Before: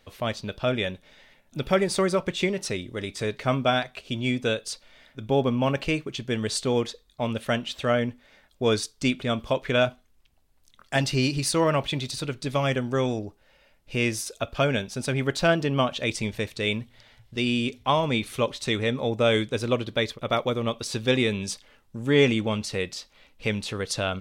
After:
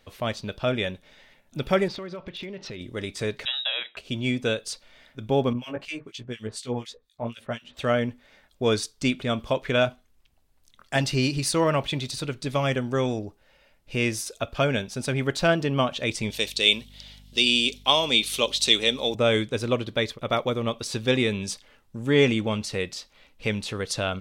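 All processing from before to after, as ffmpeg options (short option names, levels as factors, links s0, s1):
-filter_complex "[0:a]asettb=1/sr,asplit=3[s0][s1][s2];[s0]atrim=end=1.884[s3];[s1]atrim=start=1.88:end=2.81,asetpts=PTS-STARTPTS,afade=t=in:d=0.004:c=qsin,afade=t=out:st=0.926:d=0.004:c=qsin,lowpass=f=4500:w=0.5412,lowpass=f=4500:w=1.3066,acompressor=threshold=0.0224:ratio=6:attack=3.2:release=140:knee=1:detection=peak,volume=31.6,asoftclip=hard,volume=0.0316[s4];[s2]atrim=start=2.806[s5];[s3][s4]acrossfade=d=0.004:c1=hsin:c2=qsin[s6];[s6][s5]acrossfade=d=0.004:c1=qsin:c2=hsin,asettb=1/sr,asplit=3[s7][s8][s9];[s7]atrim=end=3.454[s10];[s8]atrim=start=3.45:end=3.97,asetpts=PTS-STARTPTS,afade=t=in:d=0.004:c=qsin,afade=t=out:st=0.516:d=0.004:c=qsin,highpass=f=180:p=1,acompressor=threshold=0.0562:ratio=2.5:attack=3.2:release=140:knee=1:detection=peak,lowpass=f=3400:t=q:w=0.5098,lowpass=f=3400:t=q:w=0.6013,lowpass=f=3400:t=q:w=0.9,lowpass=f=3400:t=q:w=2.563,afreqshift=-4000[s11];[s9]atrim=start=3.966[s12];[s10][s11]acrossfade=d=0.004:c1=hsin:c2=qsin[s13];[s13][s12]acrossfade=d=0.004:c1=qsin:c2=hsin,asettb=1/sr,asplit=3[s14][s15][s16];[s14]atrim=end=5.534[s17];[s15]atrim=start=5.53:end=7.77,asetpts=PTS-STARTPTS,afade=t=in:d=0.004:c=qsin,afade=t=out:st=2.236:d=0.004:c=qsin,flanger=delay=16:depth=2.2:speed=2.7,acrossover=split=1700[s18][s19];[s18]aeval=exprs='val(0)*(1-1/2+1/2*cos(2*PI*4.1*n/s))':c=same[s20];[s19]aeval=exprs='val(0)*(1-1/2-1/2*cos(2*PI*4.1*n/s))':c=same[s21];[s20][s21]amix=inputs=2:normalize=0[s22];[s16]atrim=start=7.766[s23];[s17][s22]acrossfade=d=0.004:c1=hsin:c2=qsin[s24];[s24][s23]acrossfade=d=0.004:c1=qsin:c2=hsin,asettb=1/sr,asplit=3[s25][s26][s27];[s25]atrim=end=16.304[s28];[s26]atrim=start=16.3:end=19.15,asetpts=PTS-STARTPTS,afade=t=in:d=0.004:c=qsin,afade=t=out:st=2.846:d=0.004:c=qsin,highpass=260,highshelf=f=2400:t=q:w=1.5:g=10,aeval=exprs='val(0)+0.00355*(sin(2*PI*50*n/s)+sin(2*PI*2*50*n/s)/2+sin(2*PI*3*50*n/s)/3+sin(2*PI*4*50*n/s)/4+sin(2*PI*5*50*n/s)/5)':c=same[s29];[s27]atrim=start=19.146[s30];[s28][s29]acrossfade=d=0.004:c1=hsin:c2=qsin[s31];[s31][s30]acrossfade=d=0.004:c1=qsin:c2=hsin"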